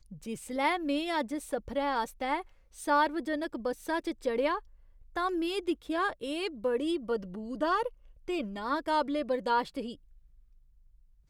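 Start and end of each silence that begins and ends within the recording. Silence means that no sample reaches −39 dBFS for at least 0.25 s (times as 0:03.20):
0:02.41–0:02.79
0:04.59–0:05.16
0:07.88–0:08.28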